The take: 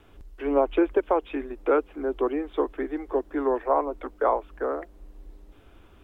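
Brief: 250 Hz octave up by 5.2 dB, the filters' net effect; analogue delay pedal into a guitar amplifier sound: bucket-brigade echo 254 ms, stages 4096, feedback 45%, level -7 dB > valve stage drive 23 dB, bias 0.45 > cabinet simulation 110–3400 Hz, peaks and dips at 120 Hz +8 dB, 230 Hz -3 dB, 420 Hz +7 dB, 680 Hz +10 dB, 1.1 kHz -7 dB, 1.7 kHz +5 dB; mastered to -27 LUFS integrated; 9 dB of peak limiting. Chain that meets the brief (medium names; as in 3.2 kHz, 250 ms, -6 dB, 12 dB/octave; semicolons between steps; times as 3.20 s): peaking EQ 250 Hz +5.5 dB; peak limiter -17.5 dBFS; bucket-brigade echo 254 ms, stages 4096, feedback 45%, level -7 dB; valve stage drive 23 dB, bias 0.45; cabinet simulation 110–3400 Hz, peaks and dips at 120 Hz +8 dB, 230 Hz -3 dB, 420 Hz +7 dB, 680 Hz +10 dB, 1.1 kHz -7 dB, 1.7 kHz +5 dB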